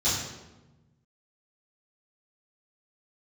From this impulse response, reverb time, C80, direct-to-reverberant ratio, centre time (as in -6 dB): 1.1 s, 4.5 dB, -12.5 dB, 65 ms